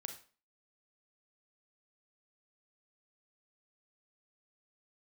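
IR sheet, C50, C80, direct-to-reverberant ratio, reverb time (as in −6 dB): 8.5 dB, 13.5 dB, 5.0 dB, 0.40 s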